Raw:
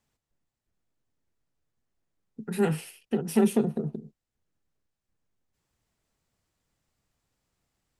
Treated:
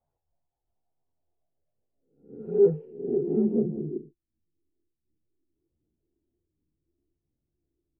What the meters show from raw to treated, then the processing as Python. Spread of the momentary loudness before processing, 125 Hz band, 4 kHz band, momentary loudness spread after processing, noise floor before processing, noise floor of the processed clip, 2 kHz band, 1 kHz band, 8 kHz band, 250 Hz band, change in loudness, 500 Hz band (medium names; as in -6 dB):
14 LU, -2.5 dB, under -35 dB, 14 LU, under -85 dBFS, -84 dBFS, under -25 dB, under -15 dB, under -35 dB, -1.5 dB, +1.5 dB, +5.0 dB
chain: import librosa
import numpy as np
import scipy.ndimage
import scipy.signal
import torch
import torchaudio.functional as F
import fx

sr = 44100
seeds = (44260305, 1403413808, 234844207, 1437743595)

y = fx.spec_swells(x, sr, rise_s=0.54)
y = fx.filter_sweep_lowpass(y, sr, from_hz=750.0, to_hz=340.0, start_s=1.13, end_s=3.45, q=5.4)
y = fx.chorus_voices(y, sr, voices=4, hz=0.66, base_ms=13, depth_ms=1.6, mix_pct=65)
y = y * 10.0 ** (-4.5 / 20.0)